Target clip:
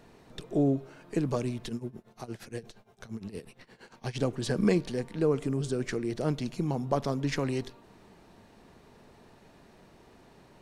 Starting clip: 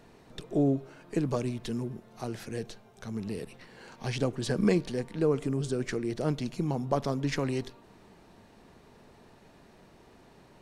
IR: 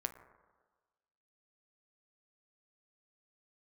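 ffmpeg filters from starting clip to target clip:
-filter_complex "[0:a]asplit=3[link_01][link_02][link_03];[link_01]afade=type=out:start_time=1.68:duration=0.02[link_04];[link_02]tremolo=f=8.6:d=0.87,afade=type=in:start_time=1.68:duration=0.02,afade=type=out:start_time=4.15:duration=0.02[link_05];[link_03]afade=type=in:start_time=4.15:duration=0.02[link_06];[link_04][link_05][link_06]amix=inputs=3:normalize=0"

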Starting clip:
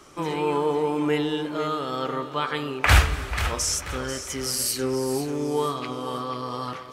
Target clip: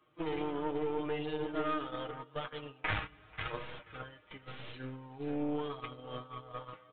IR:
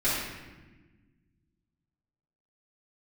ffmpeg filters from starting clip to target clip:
-af "highpass=frequency=42:width=0.5412,highpass=frequency=42:width=1.3066,acompressor=threshold=-33dB:ratio=2,aecho=1:1:6.4:0.86,flanger=delay=8.2:depth=1.7:regen=24:speed=0.82:shape=sinusoidal,agate=range=-14dB:threshold=-35dB:ratio=16:detection=peak,aeval=exprs='0.158*(cos(1*acos(clip(val(0)/0.158,-1,1)))-cos(1*PI/2))+0.0178*(cos(6*acos(clip(val(0)/0.158,-1,1)))-cos(6*PI/2))':channel_layout=same,aresample=8000,aresample=44100,volume=-4dB"

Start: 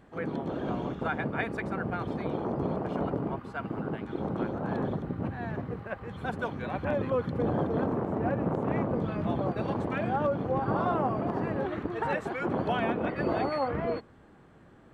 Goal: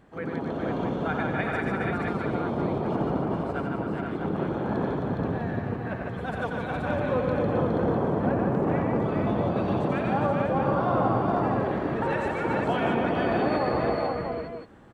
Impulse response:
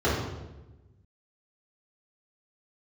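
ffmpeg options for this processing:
-af "aecho=1:1:89|150|265|413|478|650:0.531|0.631|0.398|0.562|0.631|0.422"

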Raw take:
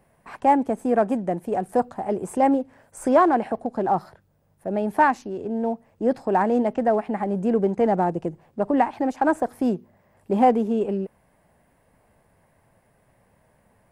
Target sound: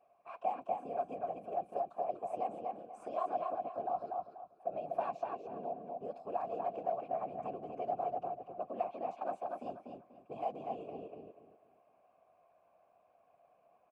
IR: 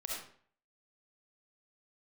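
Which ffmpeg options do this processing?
-filter_complex "[0:a]acrossover=split=150|3000[link_01][link_02][link_03];[link_02]acompressor=threshold=-30dB:ratio=5[link_04];[link_01][link_04][link_03]amix=inputs=3:normalize=0,afftfilt=real='hypot(re,im)*cos(2*PI*random(0))':imag='hypot(re,im)*sin(2*PI*random(1))':win_size=512:overlap=0.75,asplit=3[link_05][link_06][link_07];[link_05]bandpass=frequency=730:width_type=q:width=8,volume=0dB[link_08];[link_06]bandpass=frequency=1090:width_type=q:width=8,volume=-6dB[link_09];[link_07]bandpass=frequency=2440:width_type=q:width=8,volume=-9dB[link_10];[link_08][link_09][link_10]amix=inputs=3:normalize=0,afreqshift=-17,asplit=2[link_11][link_12];[link_12]adelay=243,lowpass=frequency=3900:poles=1,volume=-3dB,asplit=2[link_13][link_14];[link_14]adelay=243,lowpass=frequency=3900:poles=1,volume=0.28,asplit=2[link_15][link_16];[link_16]adelay=243,lowpass=frequency=3900:poles=1,volume=0.28,asplit=2[link_17][link_18];[link_18]adelay=243,lowpass=frequency=3900:poles=1,volume=0.28[link_19];[link_13][link_15][link_17][link_19]amix=inputs=4:normalize=0[link_20];[link_11][link_20]amix=inputs=2:normalize=0,volume=7.5dB"

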